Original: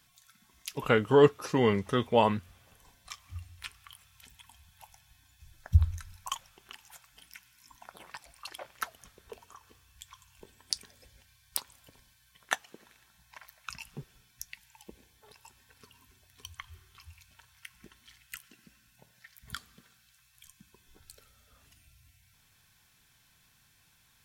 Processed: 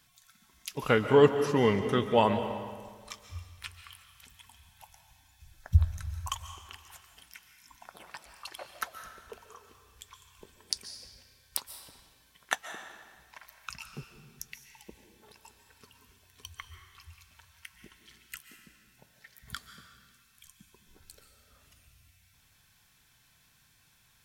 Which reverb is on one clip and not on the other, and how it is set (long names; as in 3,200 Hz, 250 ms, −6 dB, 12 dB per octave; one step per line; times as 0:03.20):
comb and all-pass reverb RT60 1.6 s, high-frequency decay 0.85×, pre-delay 100 ms, DRR 8 dB